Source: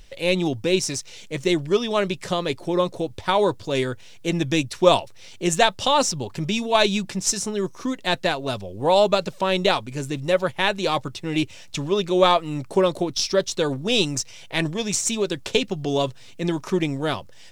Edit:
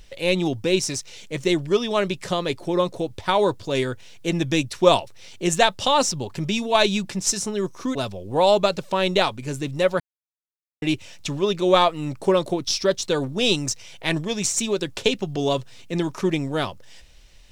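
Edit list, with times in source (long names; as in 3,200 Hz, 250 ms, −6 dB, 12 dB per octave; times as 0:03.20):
0:07.95–0:08.44: remove
0:10.49–0:11.31: silence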